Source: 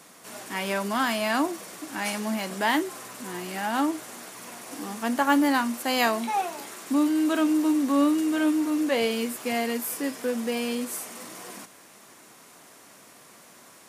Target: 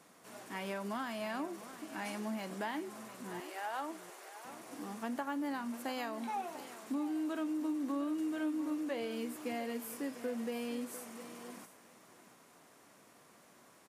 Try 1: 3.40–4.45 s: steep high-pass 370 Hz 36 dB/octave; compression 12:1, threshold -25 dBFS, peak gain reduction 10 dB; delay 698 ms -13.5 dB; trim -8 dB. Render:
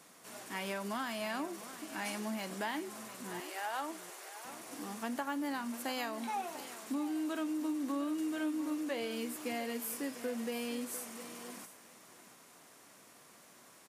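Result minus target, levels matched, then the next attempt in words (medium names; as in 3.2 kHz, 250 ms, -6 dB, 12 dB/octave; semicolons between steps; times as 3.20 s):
4 kHz band +4.0 dB
3.40–4.45 s: steep high-pass 370 Hz 36 dB/octave; compression 12:1, threshold -25 dBFS, peak gain reduction 10 dB; treble shelf 2.1 kHz -6.5 dB; delay 698 ms -13.5 dB; trim -8 dB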